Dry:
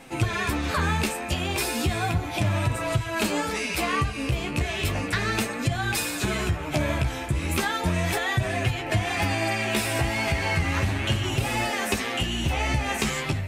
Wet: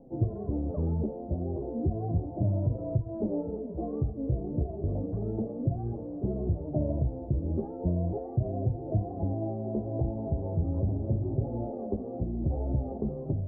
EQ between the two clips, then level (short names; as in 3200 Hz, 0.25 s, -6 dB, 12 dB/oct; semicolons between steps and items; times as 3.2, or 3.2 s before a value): steep low-pass 630 Hz 36 dB/oct; -2.5 dB